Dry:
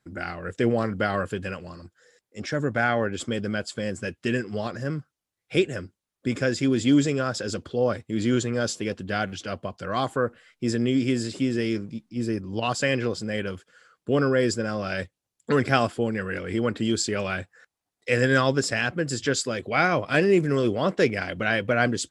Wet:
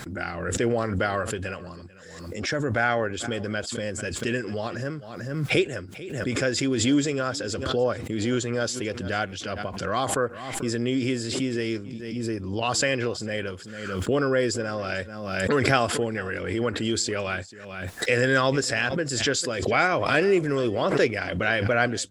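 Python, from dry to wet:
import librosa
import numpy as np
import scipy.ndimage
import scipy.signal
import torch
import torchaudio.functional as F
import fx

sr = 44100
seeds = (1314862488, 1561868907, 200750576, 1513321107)

y = x + 10.0 ** (-22.0 / 20.0) * np.pad(x, (int(443 * sr / 1000.0), 0))[:len(x)]
y = fx.dynamic_eq(y, sr, hz=180.0, q=1.3, threshold_db=-38.0, ratio=4.0, max_db=-7)
y = fx.pre_swell(y, sr, db_per_s=43.0)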